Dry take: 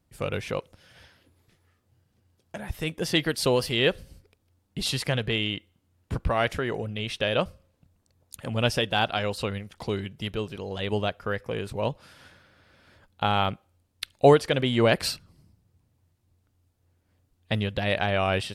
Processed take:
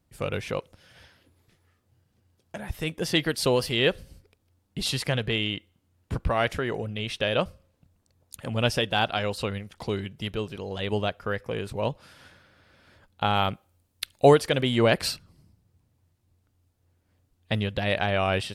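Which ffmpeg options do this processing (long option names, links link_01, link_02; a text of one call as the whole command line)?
ffmpeg -i in.wav -filter_complex "[0:a]asettb=1/sr,asplit=3[link_01][link_02][link_03];[link_01]atrim=end=13.354[link_04];[link_02]atrim=start=13.35:end=14.79,asetpts=PTS-STARTPTS,afade=type=in:duration=0.004:curve=qsin,afade=type=out:start_time=1.436:duration=0.004:curve=qsin,highshelf=frequency=8900:gain=8.5[link_05];[link_03]atrim=start=14.786[link_06];[link_04][link_05]acrossfade=duration=0.004:curve1=hsin:curve2=qsin[link_07];[link_07][link_06]acrossfade=duration=0.004:curve1=qsin:curve2=hsin" out.wav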